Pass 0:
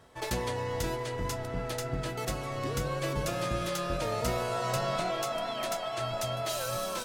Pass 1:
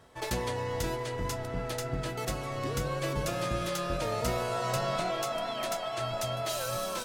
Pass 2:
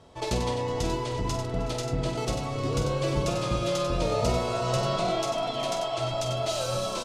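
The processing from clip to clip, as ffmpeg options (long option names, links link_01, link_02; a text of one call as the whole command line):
ffmpeg -i in.wav -af anull out.wav
ffmpeg -i in.wav -af "lowpass=6900,equalizer=frequency=1700:width=1.9:gain=-10.5,aecho=1:1:48|94|370|802:0.376|0.447|0.126|0.126,volume=4.5dB" out.wav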